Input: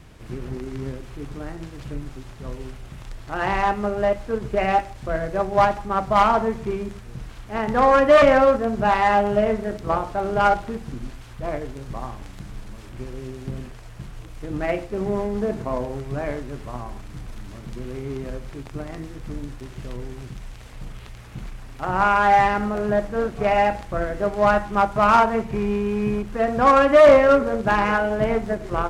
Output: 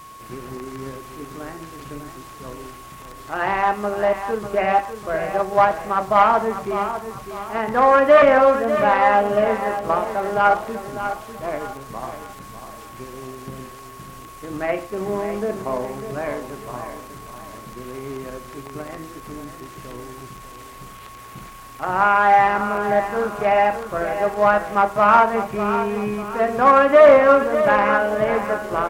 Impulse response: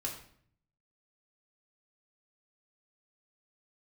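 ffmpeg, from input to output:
-filter_complex "[0:a]aemphasis=mode=production:type=bsi,aeval=exprs='val(0)+0.00794*sin(2*PI*1100*n/s)':channel_layout=same,acrossover=split=2500[link_01][link_02];[link_02]acompressor=threshold=-47dB:ratio=4:attack=1:release=60[link_03];[link_01][link_03]amix=inputs=2:normalize=0,aecho=1:1:598|1196|1794|2392:0.316|0.117|0.0433|0.016,volume=2.5dB"

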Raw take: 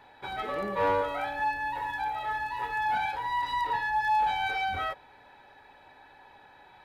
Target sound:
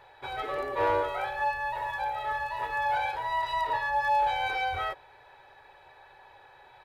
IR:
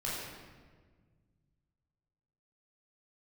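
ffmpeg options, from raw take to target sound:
-filter_complex "[0:a]afftfilt=real='re*(1-between(b*sr/4096,160,340))':imag='im*(1-between(b*sr/4096,160,340))':win_size=4096:overlap=0.75,asplit=2[link_01][link_02];[link_02]asetrate=29433,aresample=44100,atempo=1.49831,volume=-12dB[link_03];[link_01][link_03]amix=inputs=2:normalize=0"

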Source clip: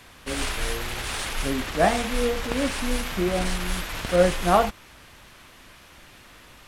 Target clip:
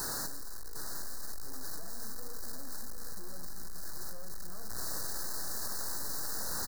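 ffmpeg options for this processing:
ffmpeg -i in.wav -filter_complex "[0:a]equalizer=frequency=800:width_type=o:width=0.47:gain=-13.5,bandreject=frequency=60:width_type=h:width=6,bandreject=frequency=120:width_type=h:width=6,dynaudnorm=framelen=160:gausssize=5:maxgain=11dB,asettb=1/sr,asplit=3[link_01][link_02][link_03];[link_01]atrim=end=0.844[link_04];[link_02]atrim=start=0.84:end=2.97,asetpts=PTS-STARTPTS,afade=type=in:duration=0.004:curve=qsin,afade=type=out:start_time=2.126:duration=0.004:curve=qsin,flanger=delay=5.7:depth=9.7:regen=30:speed=1.9:shape=sinusoidal[link_05];[link_03]atrim=start=2.966[link_06];[link_04][link_05]acrossfade=duration=0.004:curve1=hsin:curve2=qsin[link_07];[link_07][link_06]acrossfade=duration=0.004:curve1=qsin:curve2=hsin,aeval=exprs='(tanh(355*val(0)+0.2)-tanh(0.2))/355':channel_layout=same,aeval=exprs='0.00355*sin(PI/2*5.62*val(0)/0.00355)':channel_layout=same,asuperstop=centerf=2700:order=12:qfactor=1.2,aecho=1:1:756:0.398,volume=16dB" out.wav

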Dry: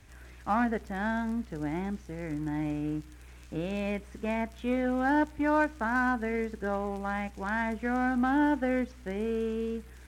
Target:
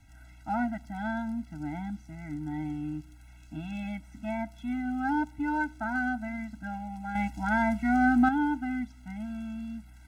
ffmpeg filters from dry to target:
ffmpeg -i in.wav -filter_complex "[0:a]asettb=1/sr,asplit=3[link_01][link_02][link_03];[link_01]atrim=end=7.154[link_04];[link_02]atrim=start=7.15:end=8.29,asetpts=PTS-STARTPTS,afade=type=in:duration=0.004:curve=qsin,afade=type=out:start_time=1.136:duration=0.004:curve=qsin,acontrast=90[link_05];[link_03]atrim=start=8.286[link_06];[link_04][link_05]acrossfade=duration=0.004:curve1=hsin:curve2=qsin[link_07];[link_07][link_06]acrossfade=duration=0.004:curve1=qsin:curve2=hsin,afftfilt=real='re*eq(mod(floor(b*sr/1024/320),2),0)':imag='im*eq(mod(floor(b*sr/1024/320),2),0)':win_size=1024:overlap=0.75,volume=-1.5dB" out.wav

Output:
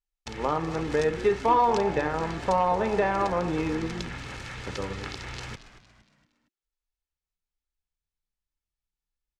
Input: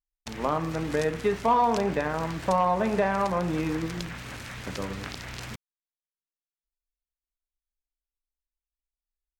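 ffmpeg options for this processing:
ffmpeg -i in.wav -filter_complex "[0:a]lowpass=7200,aecho=1:1:2.3:0.38,asplit=2[link_01][link_02];[link_02]asplit=4[link_03][link_04][link_05][link_06];[link_03]adelay=231,afreqshift=-90,volume=-14dB[link_07];[link_04]adelay=462,afreqshift=-180,volume=-21.1dB[link_08];[link_05]adelay=693,afreqshift=-270,volume=-28.3dB[link_09];[link_06]adelay=924,afreqshift=-360,volume=-35.4dB[link_10];[link_07][link_08][link_09][link_10]amix=inputs=4:normalize=0[link_11];[link_01][link_11]amix=inputs=2:normalize=0" out.wav

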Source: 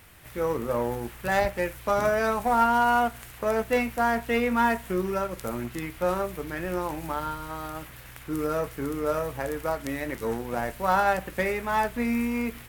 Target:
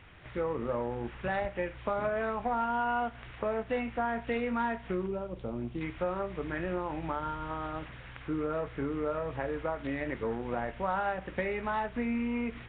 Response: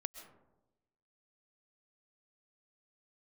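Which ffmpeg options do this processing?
-filter_complex "[0:a]acompressor=threshold=-30dB:ratio=3,asettb=1/sr,asplit=3[link_01][link_02][link_03];[link_01]atrim=end=5.064[link_04];[link_02]atrim=start=5.06:end=5.81,asetpts=PTS-STARTPTS,afade=type=in:duration=0.004:curve=qsin,afade=type=out:start_time=0.746:duration=0.004:curve=qsin,equalizer=frequency=1700:width_type=o:width=1.7:gain=-13.5[link_05];[link_03]atrim=start=5.806[link_06];[link_04][link_05]acrossfade=duration=0.004:curve1=hsin:curve2=qsin[link_07];[link_07][link_06]acrossfade=duration=0.004:curve1=qsin:curve2=hsin" -ar 8000 -c:a nellymoser

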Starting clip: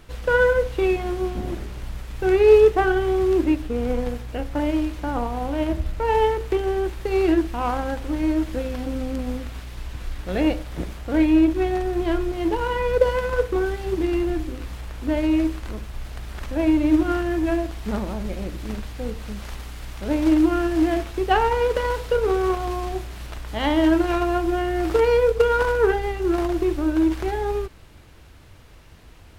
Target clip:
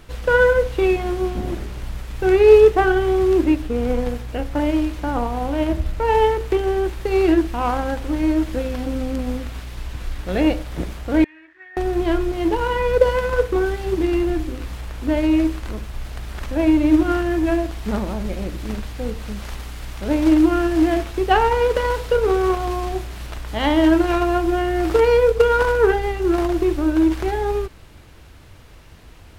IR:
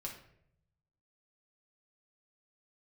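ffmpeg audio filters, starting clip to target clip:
-filter_complex "[0:a]asettb=1/sr,asplit=3[link_01][link_02][link_03];[link_01]atrim=end=11.244[link_04];[link_02]atrim=start=11.24:end=11.77,asetpts=PTS-STARTPTS,afade=type=in:duration=0.004:curve=qsin,afade=type=out:start_time=0.526:duration=0.004:curve=qsin,bandpass=frequency=1800:width_type=q:width=13:csg=0[link_05];[link_03]atrim=start=11.766[link_06];[link_04][link_05]acrossfade=duration=0.004:curve1=hsin:curve2=qsin[link_07];[link_07][link_06]acrossfade=duration=0.004:curve1=qsin:curve2=hsin,volume=3dB"

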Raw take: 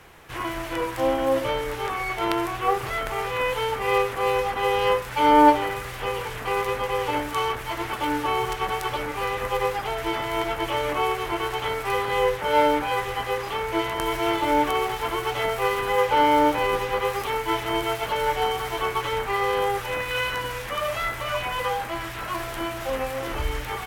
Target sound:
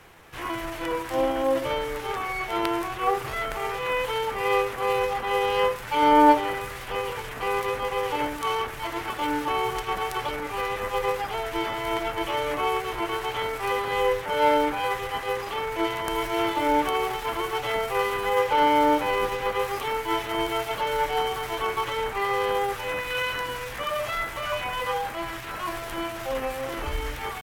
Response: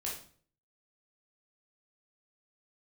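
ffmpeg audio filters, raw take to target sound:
-af "bandreject=frequency=60:width_type=h:width=6,bandreject=frequency=120:width_type=h:width=6,atempo=0.87,volume=-1.5dB"

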